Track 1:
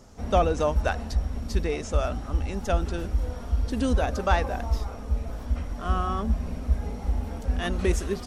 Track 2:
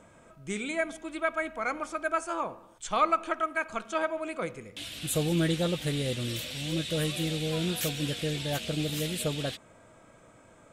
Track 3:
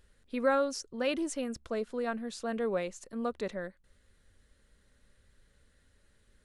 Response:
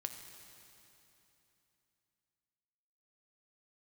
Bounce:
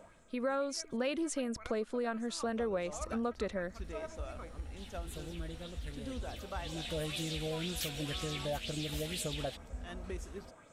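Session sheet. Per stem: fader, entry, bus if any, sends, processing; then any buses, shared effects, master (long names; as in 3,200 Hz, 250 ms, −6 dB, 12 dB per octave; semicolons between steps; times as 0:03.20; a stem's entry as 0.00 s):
−17.0 dB, 2.25 s, no send, no processing
−4.5 dB, 0.00 s, no send, auto-filter bell 2 Hz 590–7,300 Hz +10 dB; automatic ducking −15 dB, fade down 0.55 s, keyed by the third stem
−4.0 dB, 0.00 s, no send, automatic gain control gain up to 12 dB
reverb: not used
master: downward compressor 3 to 1, threshold −35 dBFS, peak gain reduction 12.5 dB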